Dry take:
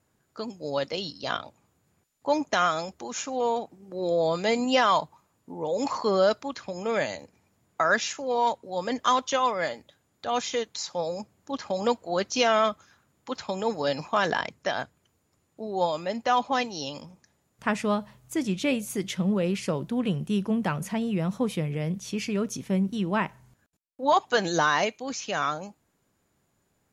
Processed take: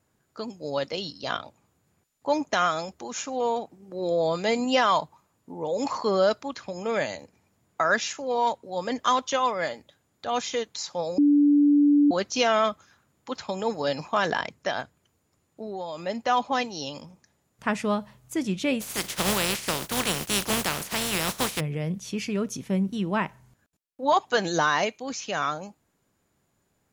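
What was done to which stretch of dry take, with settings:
11.18–12.11 s: bleep 290 Hz -15 dBFS
14.80–16.03 s: compression, threshold -30 dBFS
18.80–21.59 s: spectral contrast reduction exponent 0.31

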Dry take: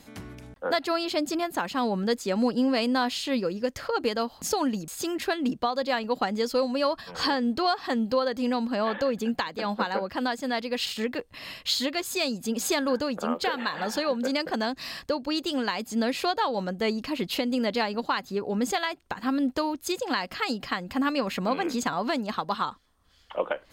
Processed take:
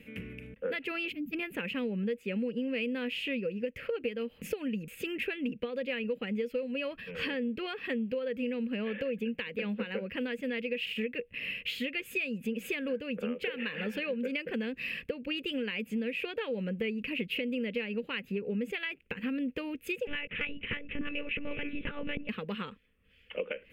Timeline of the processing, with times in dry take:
1.12–1.33 s: time-frequency box 320–12000 Hz -22 dB
20.07–22.29 s: monotone LPC vocoder at 8 kHz 290 Hz
whole clip: FFT filter 120 Hz 0 dB, 210 Hz +7 dB, 330 Hz -4 dB, 480 Hz +9 dB, 690 Hz -15 dB, 1 kHz -16 dB, 2.6 kHz +14 dB, 4.1 kHz -16 dB, 6.4 kHz -18 dB, 12 kHz -6 dB; compression, threshold -27 dBFS; trim -3.5 dB

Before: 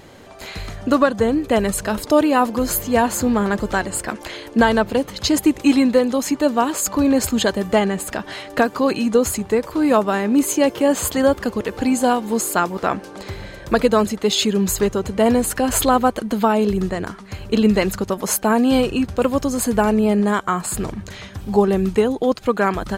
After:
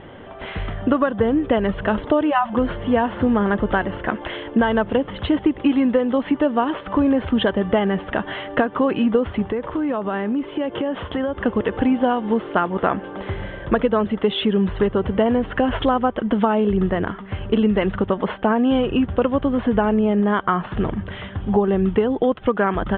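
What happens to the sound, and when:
2.30–2.53 s: spectral selection erased 220–540 Hz
9.51–11.45 s: compression 8:1, threshold -23 dBFS
whole clip: compression, threshold -18 dBFS; steep low-pass 3.4 kHz 96 dB/octave; peaking EQ 2.4 kHz -7.5 dB 0.26 oct; trim +4 dB

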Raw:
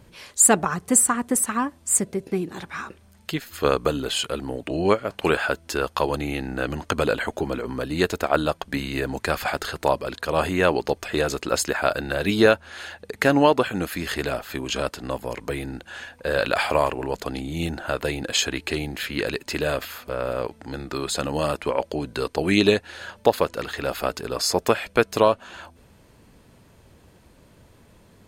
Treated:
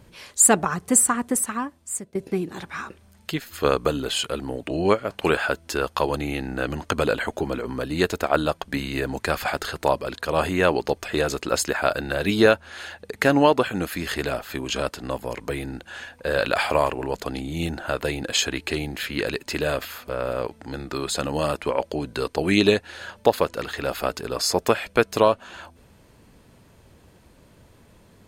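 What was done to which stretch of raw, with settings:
1.21–2.15 s: fade out, to -16.5 dB

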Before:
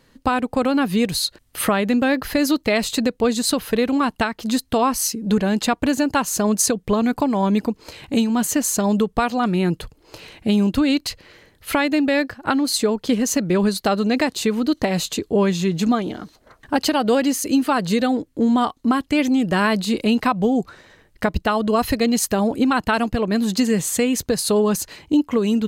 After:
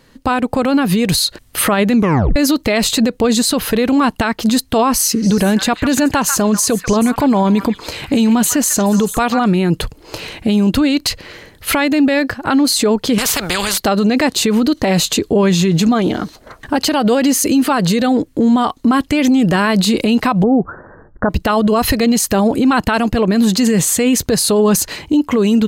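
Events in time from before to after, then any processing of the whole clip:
1.95 s: tape stop 0.41 s
4.94–9.39 s: repeats whose band climbs or falls 142 ms, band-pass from 1.6 kHz, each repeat 1.4 oct, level -7 dB
13.18–13.78 s: spectrum-flattening compressor 4:1
20.43–21.30 s: steep low-pass 1.6 kHz 72 dB/octave
whole clip: level rider gain up to 9 dB; loudness maximiser +11.5 dB; trim -5 dB

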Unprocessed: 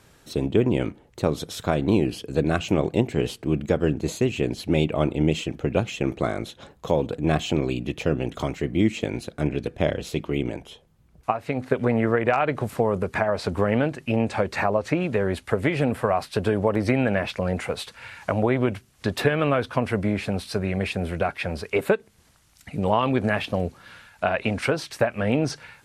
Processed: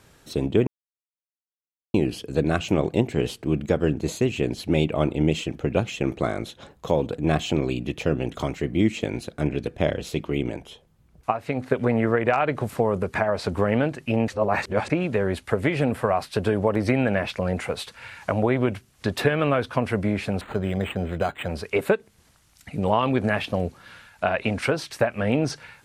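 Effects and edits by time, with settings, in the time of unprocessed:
0.67–1.94 s: mute
14.28–14.90 s: reverse
20.41–21.49 s: decimation joined by straight lines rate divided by 8×

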